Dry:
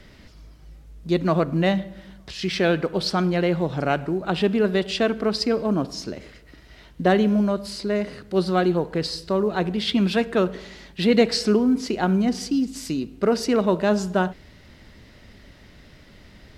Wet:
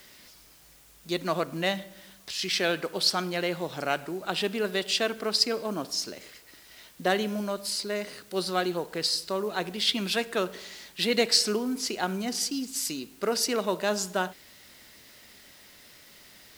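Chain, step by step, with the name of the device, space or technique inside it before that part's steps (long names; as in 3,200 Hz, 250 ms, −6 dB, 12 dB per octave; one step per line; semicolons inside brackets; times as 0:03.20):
turntable without a phono preamp (RIAA equalisation recording; white noise bed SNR 27 dB)
level −4.5 dB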